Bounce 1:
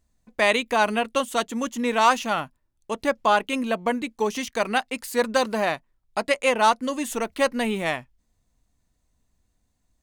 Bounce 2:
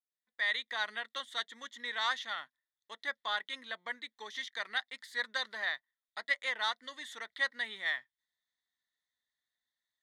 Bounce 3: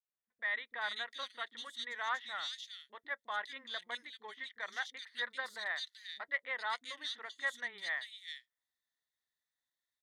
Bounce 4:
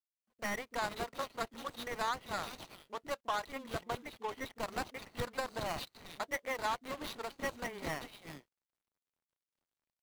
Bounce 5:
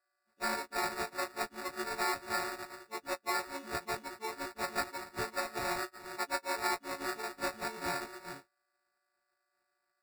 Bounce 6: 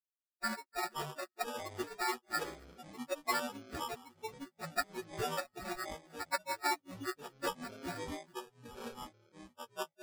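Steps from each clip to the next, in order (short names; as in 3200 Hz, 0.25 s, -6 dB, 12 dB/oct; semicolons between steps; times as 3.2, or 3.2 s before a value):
opening faded in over 0.77 s; double band-pass 2600 Hz, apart 0.9 oct
three bands offset in time lows, mids, highs 30/420 ms, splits 270/2800 Hz; gain -2 dB
median filter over 25 samples; compressor 4:1, threshold -46 dBFS, peak gain reduction 10 dB; gain +13.5 dB
frequency quantiser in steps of 4 st; sample-and-hold 14×; gain -1.5 dB
per-bin expansion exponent 3; echoes that change speed 0.304 s, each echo -7 st, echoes 3, each echo -6 dB; gain +4.5 dB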